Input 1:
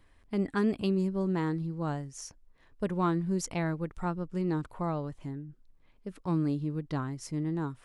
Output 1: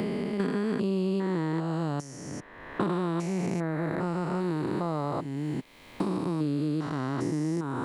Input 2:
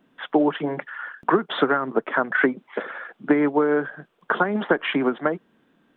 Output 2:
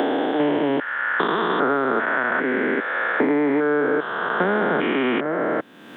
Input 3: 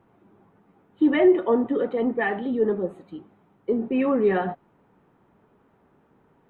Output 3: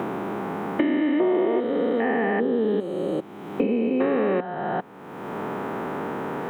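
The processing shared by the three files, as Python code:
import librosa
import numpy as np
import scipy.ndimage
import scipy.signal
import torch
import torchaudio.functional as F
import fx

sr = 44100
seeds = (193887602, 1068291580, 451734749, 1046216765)

y = fx.spec_steps(x, sr, hold_ms=400)
y = fx.highpass(y, sr, hz=260.0, slope=6)
y = fx.band_squash(y, sr, depth_pct=100)
y = y * librosa.db_to_amplitude(7.5)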